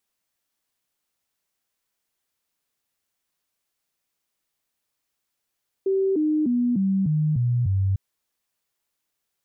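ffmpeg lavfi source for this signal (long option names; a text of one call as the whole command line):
ffmpeg -f lavfi -i "aevalsrc='0.119*clip(min(mod(t,0.3),0.3-mod(t,0.3))/0.005,0,1)*sin(2*PI*386*pow(2,-floor(t/0.3)/3)*mod(t,0.3))':duration=2.1:sample_rate=44100" out.wav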